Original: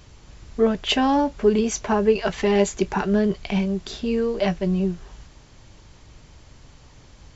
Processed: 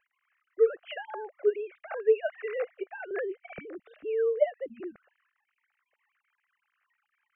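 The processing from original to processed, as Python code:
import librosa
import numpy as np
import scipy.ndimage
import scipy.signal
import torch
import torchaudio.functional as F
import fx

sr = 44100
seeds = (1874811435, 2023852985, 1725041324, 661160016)

y = fx.sine_speech(x, sr)
y = fx.highpass(y, sr, hz=480.0, slope=24, at=(0.76, 3.11))
y = fx.fixed_phaser(y, sr, hz=940.0, stages=6)
y = y * librosa.db_to_amplitude(-4.5)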